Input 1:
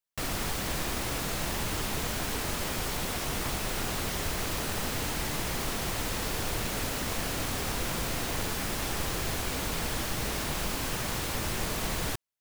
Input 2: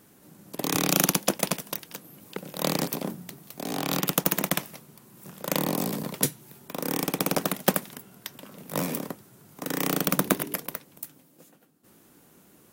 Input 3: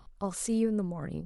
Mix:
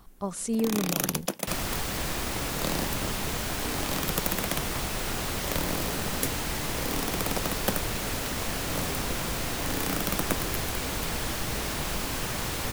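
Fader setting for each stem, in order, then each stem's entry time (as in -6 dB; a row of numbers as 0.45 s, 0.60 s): +1.0 dB, -6.0 dB, +1.0 dB; 1.30 s, 0.00 s, 0.00 s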